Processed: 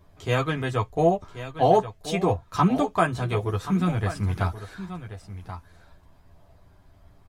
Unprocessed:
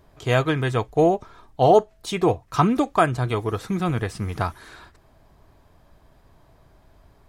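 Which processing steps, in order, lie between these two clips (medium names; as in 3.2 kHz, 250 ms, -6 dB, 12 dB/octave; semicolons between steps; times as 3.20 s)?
delay 1081 ms -12.5 dB; chorus voices 6, 0.4 Hz, delay 11 ms, depth 1 ms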